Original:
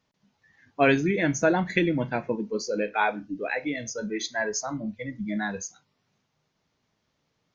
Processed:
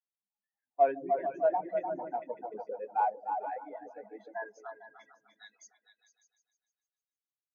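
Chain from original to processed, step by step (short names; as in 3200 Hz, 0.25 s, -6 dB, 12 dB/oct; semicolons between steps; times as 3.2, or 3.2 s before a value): band-pass sweep 780 Hz -> 4000 Hz, 4.3–5.1; repeats that get brighter 0.15 s, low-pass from 400 Hz, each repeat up 2 oct, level 0 dB; in parallel at -5 dB: hard clip -28 dBFS, distortion -8 dB; on the sum: reverb removal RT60 1.7 s; spectral expander 1.5:1; gain -1 dB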